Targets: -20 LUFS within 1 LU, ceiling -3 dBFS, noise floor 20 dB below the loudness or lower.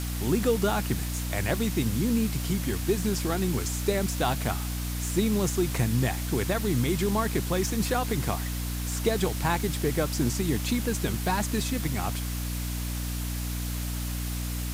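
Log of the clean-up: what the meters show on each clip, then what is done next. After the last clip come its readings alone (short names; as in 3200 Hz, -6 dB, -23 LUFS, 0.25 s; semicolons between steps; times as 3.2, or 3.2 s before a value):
hum 60 Hz; harmonics up to 300 Hz; hum level -29 dBFS; noise floor -32 dBFS; noise floor target -48 dBFS; loudness -28.0 LUFS; peak -12.0 dBFS; loudness target -20.0 LUFS
-> de-hum 60 Hz, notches 5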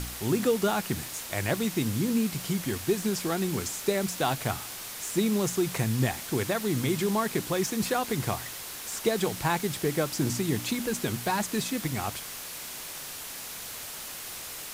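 hum none; noise floor -40 dBFS; noise floor target -50 dBFS
-> denoiser 10 dB, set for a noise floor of -40 dBFS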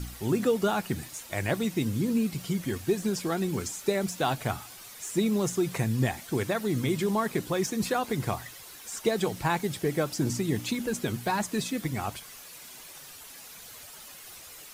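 noise floor -47 dBFS; noise floor target -50 dBFS
-> denoiser 6 dB, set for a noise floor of -47 dBFS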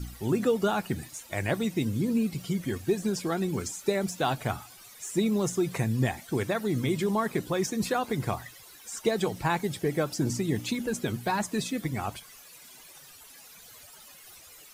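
noise floor -51 dBFS; loudness -29.5 LUFS; peak -13.0 dBFS; loudness target -20.0 LUFS
-> gain +9.5 dB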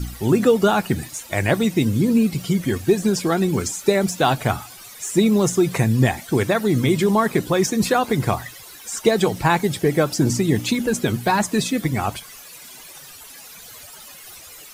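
loudness -20.0 LUFS; peak -3.5 dBFS; noise floor -41 dBFS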